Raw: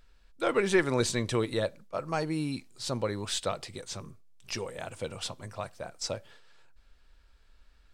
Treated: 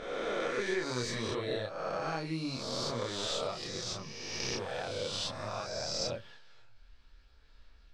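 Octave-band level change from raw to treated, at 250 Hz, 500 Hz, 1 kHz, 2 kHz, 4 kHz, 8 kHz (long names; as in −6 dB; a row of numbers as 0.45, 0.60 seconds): −6.0, −4.0, −2.0, −3.0, +1.5, −2.5 decibels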